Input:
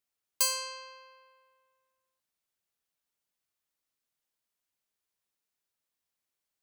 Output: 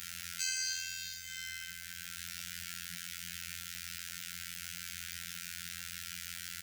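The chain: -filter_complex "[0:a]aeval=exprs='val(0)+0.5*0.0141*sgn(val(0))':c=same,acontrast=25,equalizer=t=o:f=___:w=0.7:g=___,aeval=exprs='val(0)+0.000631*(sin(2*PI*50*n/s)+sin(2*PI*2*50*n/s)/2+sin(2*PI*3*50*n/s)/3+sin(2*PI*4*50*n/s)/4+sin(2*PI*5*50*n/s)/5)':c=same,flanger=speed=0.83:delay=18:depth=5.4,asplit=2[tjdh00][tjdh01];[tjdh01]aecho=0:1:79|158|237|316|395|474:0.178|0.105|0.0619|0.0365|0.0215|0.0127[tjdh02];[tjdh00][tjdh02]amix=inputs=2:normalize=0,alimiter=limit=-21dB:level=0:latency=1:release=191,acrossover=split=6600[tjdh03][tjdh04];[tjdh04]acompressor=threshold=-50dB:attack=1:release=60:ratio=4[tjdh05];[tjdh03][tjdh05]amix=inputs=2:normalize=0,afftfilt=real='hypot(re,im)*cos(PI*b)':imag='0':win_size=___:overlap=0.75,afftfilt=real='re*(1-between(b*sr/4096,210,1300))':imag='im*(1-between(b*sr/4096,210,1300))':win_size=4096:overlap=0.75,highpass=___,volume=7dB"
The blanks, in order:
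4100, -3, 2048, 56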